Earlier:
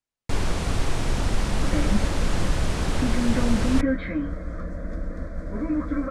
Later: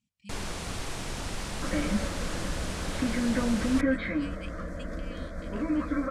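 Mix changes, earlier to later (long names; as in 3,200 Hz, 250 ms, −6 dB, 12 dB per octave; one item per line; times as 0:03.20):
speech: unmuted
first sound −7.0 dB
master: add spectral tilt +1.5 dB per octave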